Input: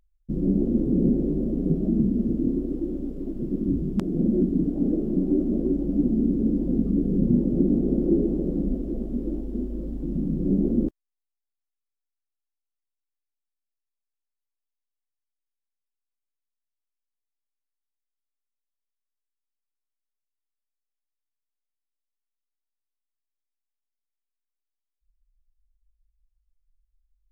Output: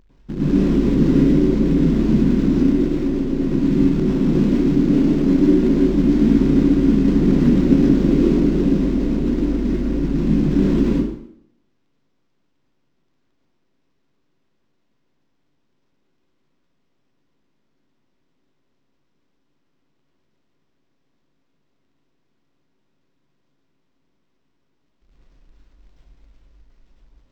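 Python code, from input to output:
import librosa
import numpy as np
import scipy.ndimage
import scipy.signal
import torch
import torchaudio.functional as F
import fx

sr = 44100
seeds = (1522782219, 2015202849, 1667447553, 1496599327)

p1 = fx.bin_compress(x, sr, power=0.6)
p2 = fx.quant_companded(p1, sr, bits=4)
p3 = p1 + (p2 * librosa.db_to_amplitude(-4.0))
p4 = fx.rev_plate(p3, sr, seeds[0], rt60_s=0.71, hf_ratio=0.85, predelay_ms=90, drr_db=-7.0)
p5 = np.interp(np.arange(len(p4)), np.arange(len(p4))[::4], p4[::4])
y = p5 * librosa.db_to_amplitude(-9.5)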